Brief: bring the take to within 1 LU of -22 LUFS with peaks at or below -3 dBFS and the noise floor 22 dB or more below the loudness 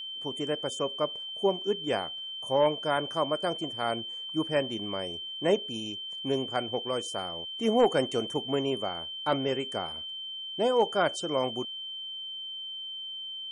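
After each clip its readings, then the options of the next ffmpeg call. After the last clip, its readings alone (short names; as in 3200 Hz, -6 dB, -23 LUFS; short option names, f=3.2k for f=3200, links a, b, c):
steady tone 3100 Hz; tone level -36 dBFS; loudness -30.0 LUFS; peak -13.5 dBFS; loudness target -22.0 LUFS
-> -af "bandreject=f=3.1k:w=30"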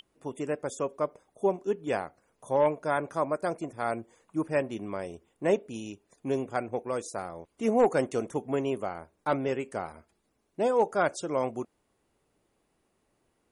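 steady tone none; loudness -30.5 LUFS; peak -14.0 dBFS; loudness target -22.0 LUFS
-> -af "volume=8.5dB"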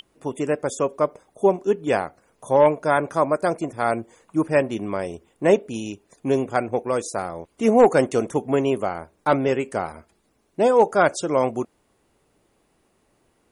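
loudness -22.0 LUFS; peak -5.5 dBFS; noise floor -66 dBFS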